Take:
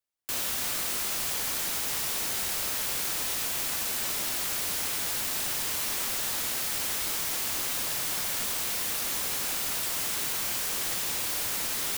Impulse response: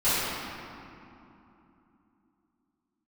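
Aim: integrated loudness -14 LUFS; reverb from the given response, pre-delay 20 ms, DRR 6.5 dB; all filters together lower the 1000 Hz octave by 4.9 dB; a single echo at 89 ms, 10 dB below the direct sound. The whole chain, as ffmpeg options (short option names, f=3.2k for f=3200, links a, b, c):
-filter_complex "[0:a]equalizer=f=1k:t=o:g=-6.5,aecho=1:1:89:0.316,asplit=2[a][b];[1:a]atrim=start_sample=2205,adelay=20[c];[b][c]afir=irnorm=-1:irlink=0,volume=-22.5dB[d];[a][d]amix=inputs=2:normalize=0,volume=13dB"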